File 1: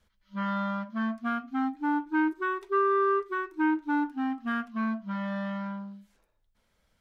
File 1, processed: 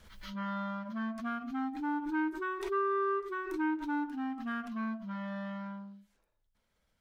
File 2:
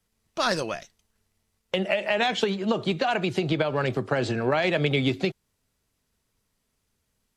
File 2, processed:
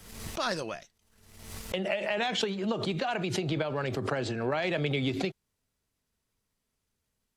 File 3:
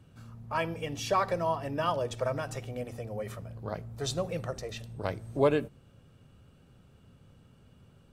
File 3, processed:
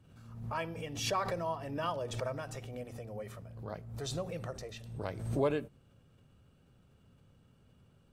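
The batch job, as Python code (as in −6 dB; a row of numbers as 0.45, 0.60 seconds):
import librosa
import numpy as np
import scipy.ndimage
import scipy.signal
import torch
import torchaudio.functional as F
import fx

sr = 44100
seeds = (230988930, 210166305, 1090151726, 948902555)

y = fx.pre_swell(x, sr, db_per_s=58.0)
y = F.gain(torch.from_numpy(y), -6.5).numpy()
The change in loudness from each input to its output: −6.0, −5.5, −5.0 LU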